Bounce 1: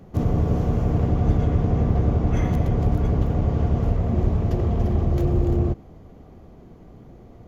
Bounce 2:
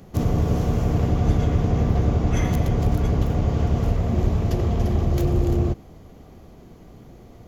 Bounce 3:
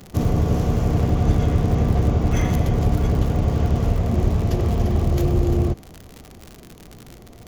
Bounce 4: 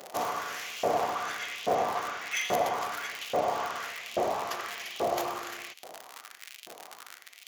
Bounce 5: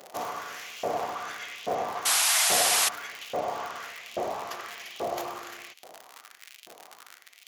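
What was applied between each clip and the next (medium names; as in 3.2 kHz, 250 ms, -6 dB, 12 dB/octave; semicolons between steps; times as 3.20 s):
treble shelf 2.6 kHz +11.5 dB
crackle 100 per s -29 dBFS; trim +1.5 dB
LFO high-pass saw up 1.2 Hz 550–3000 Hz
painted sound noise, 2.05–2.89 s, 620–12000 Hz -21 dBFS; trim -2.5 dB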